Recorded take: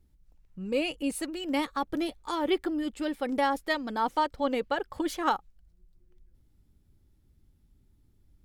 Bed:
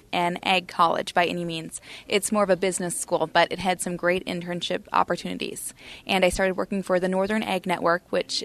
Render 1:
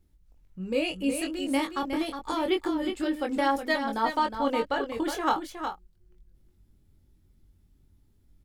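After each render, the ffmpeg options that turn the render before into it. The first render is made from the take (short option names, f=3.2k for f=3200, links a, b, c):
-filter_complex "[0:a]asplit=2[a][b];[b]adelay=22,volume=-5dB[c];[a][c]amix=inputs=2:normalize=0,aecho=1:1:364:0.422"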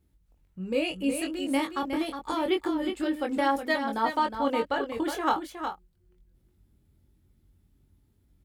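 -af "highpass=45,equalizer=f=5.6k:w=1.5:g=-3.5"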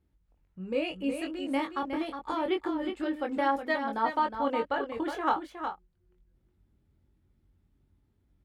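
-af "lowpass=f=1.1k:p=1,tiltshelf=f=710:g=-4.5"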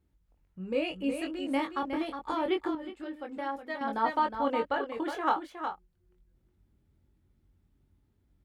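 -filter_complex "[0:a]asettb=1/sr,asplit=3[a][b][c];[a]atrim=end=4.774[d];[b]atrim=start=4.77:end=5.7,asetpts=PTS-STARTPTS,afade=t=in:d=0.004:c=qsin,afade=t=out:st=0.926:d=0.004:c=qsin,equalizer=f=75:t=o:w=1.6:g=-13[e];[c]atrim=start=5.696[f];[d][e]acrossfade=d=0.004:c1=hsin:c2=qsin[g];[g][f]acrossfade=d=0.004:c1=qsin:c2=hsin,asplit=3[h][i][j];[h]atrim=end=2.752[k];[i]atrim=start=2.748:end=3.812,asetpts=PTS-STARTPTS,volume=-8dB[l];[j]atrim=start=3.808[m];[k][l]acrossfade=d=0.004:c1=hsin:c2=hsin[n];[n][m]acrossfade=d=0.004:c1=hsin:c2=hsin"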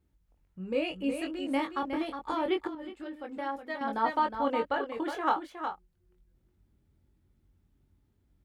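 -filter_complex "[0:a]asettb=1/sr,asplit=3[a][b][c];[a]atrim=end=2.674[d];[b]atrim=start=2.67:end=3.24,asetpts=PTS-STARTPTS,afade=t=in:d=0.004:c=qsin,afade=t=out:st=0.566:d=0.004:c=qsin,acompressor=threshold=-35dB:ratio=6:attack=3.2:release=140:knee=1:detection=peak[e];[c]atrim=start=3.236[f];[d][e]acrossfade=d=0.004:c1=hsin:c2=qsin[g];[g][f]acrossfade=d=0.004:c1=qsin:c2=hsin"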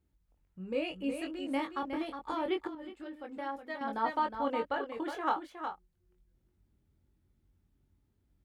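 -af "volume=-3.5dB"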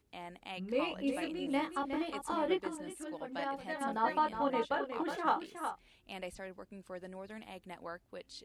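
-filter_complex "[1:a]volume=-23dB[a];[0:a][a]amix=inputs=2:normalize=0"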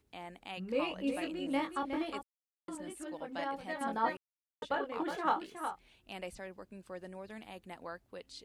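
-filter_complex "[0:a]asplit=5[a][b][c][d][e];[a]atrim=end=2.23,asetpts=PTS-STARTPTS,afade=t=out:st=2.226:d=0.004:c=hsin[f];[b]atrim=start=2.23:end=2.68,asetpts=PTS-STARTPTS,volume=0[g];[c]atrim=start=2.68:end=4.17,asetpts=PTS-STARTPTS,afade=t=in:d=0.004:c=hsin,afade=t=out:st=1.486:d=0.004:c=hsin[h];[d]atrim=start=4.17:end=4.62,asetpts=PTS-STARTPTS,volume=0[i];[e]atrim=start=4.62,asetpts=PTS-STARTPTS,afade=t=in:d=0.004:c=hsin[j];[f][g][h][i][j]concat=n=5:v=0:a=1"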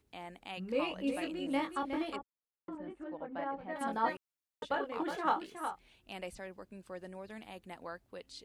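-filter_complex "[0:a]asettb=1/sr,asplit=3[a][b][c];[a]atrim=end=2.164[d];[b]atrim=start=2.16:end=3.76,asetpts=PTS-STARTPTS,afade=t=in:d=0.004:c=qsin,afade=t=out:st=1.596:d=0.004:c=qsin,lowpass=1.6k[e];[c]atrim=start=3.756[f];[d][e]acrossfade=d=0.004:c1=hsin:c2=qsin[g];[g][f]acrossfade=d=0.004:c1=qsin:c2=hsin"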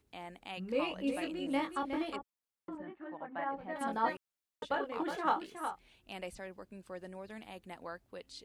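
-filter_complex "[0:a]asettb=1/sr,asplit=3[a][b][c];[a]atrim=end=2.824[d];[b]atrim=start=2.82:end=3.49,asetpts=PTS-STARTPTS,afade=t=in:d=0.004:c=qsin,afade=t=out:st=0.666:d=0.004:c=qsin,highpass=130,equalizer=f=270:t=q:w=4:g=-4,equalizer=f=490:t=q:w=4:g=-8,equalizer=f=780:t=q:w=4:g=3,equalizer=f=1.1k:t=q:w=4:g=4,equalizer=f=1.8k:t=q:w=4:g=6,lowpass=f=3.8k:w=0.5412,lowpass=f=3.8k:w=1.3066[e];[c]atrim=start=3.486[f];[d][e]acrossfade=d=0.004:c1=hsin:c2=qsin[g];[g][f]acrossfade=d=0.004:c1=qsin:c2=hsin"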